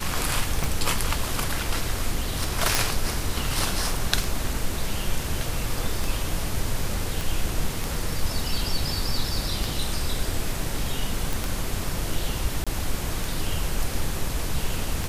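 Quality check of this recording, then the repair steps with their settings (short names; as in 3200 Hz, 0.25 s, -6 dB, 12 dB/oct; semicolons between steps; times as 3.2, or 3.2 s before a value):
tick 33 1/3 rpm
2.75 pop
7.21 pop
11.33 pop
12.64–12.67 gap 26 ms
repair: de-click; interpolate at 12.64, 26 ms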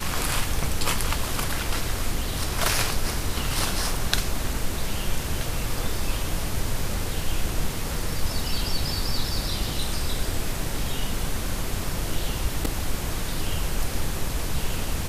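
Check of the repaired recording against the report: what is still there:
none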